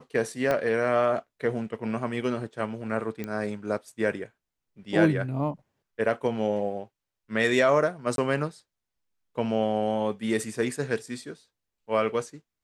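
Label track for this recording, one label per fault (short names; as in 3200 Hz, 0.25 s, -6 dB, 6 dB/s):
0.510000	0.510000	pop -13 dBFS
3.240000	3.240000	pop -19 dBFS
8.160000	8.180000	gap 22 ms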